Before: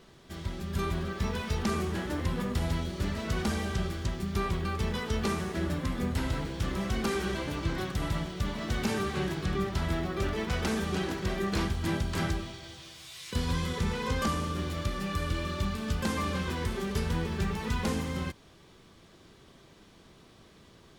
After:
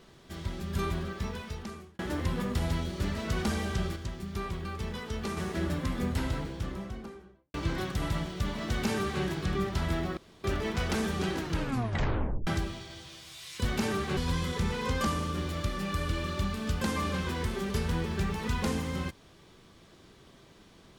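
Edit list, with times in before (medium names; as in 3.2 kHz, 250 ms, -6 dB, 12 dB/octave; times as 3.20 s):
0.85–1.99 s: fade out
3.96–5.37 s: gain -5 dB
6.08–7.54 s: studio fade out
8.71–9.23 s: copy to 13.38 s
10.17 s: insert room tone 0.27 s
11.12 s: tape stop 1.08 s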